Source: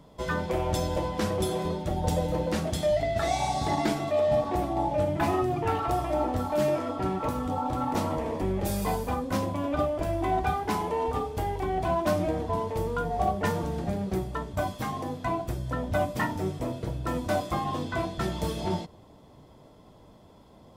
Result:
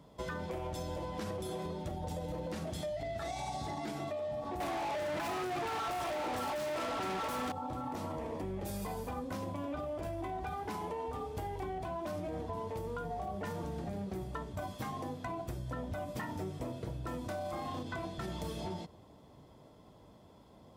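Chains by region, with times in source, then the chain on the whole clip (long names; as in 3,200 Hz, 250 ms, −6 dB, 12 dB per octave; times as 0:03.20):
0:04.60–0:07.52: high-shelf EQ 4,000 Hz +11.5 dB + mid-hump overdrive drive 36 dB, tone 2,900 Hz, clips at −12.5 dBFS
0:17.27–0:17.83: high-pass filter 61 Hz + double-tracking delay 32 ms −5 dB + flutter between parallel walls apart 7.5 metres, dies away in 0.5 s
whole clip: high-pass filter 43 Hz; brickwall limiter −22 dBFS; downward compressor, threshold −31 dBFS; level −4.5 dB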